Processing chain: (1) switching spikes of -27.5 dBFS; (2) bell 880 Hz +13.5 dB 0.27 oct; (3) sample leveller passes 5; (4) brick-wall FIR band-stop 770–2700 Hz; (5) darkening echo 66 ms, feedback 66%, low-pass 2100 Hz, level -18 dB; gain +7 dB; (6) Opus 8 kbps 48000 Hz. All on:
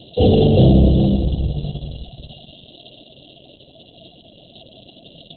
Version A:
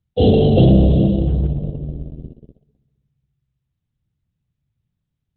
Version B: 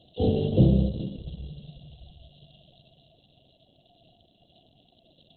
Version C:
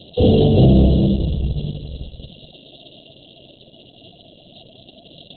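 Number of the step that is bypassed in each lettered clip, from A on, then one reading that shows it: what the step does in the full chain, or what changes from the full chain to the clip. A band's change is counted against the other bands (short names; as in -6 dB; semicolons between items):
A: 1, distortion -11 dB; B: 3, crest factor change +6.0 dB; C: 2, 1 kHz band -2.0 dB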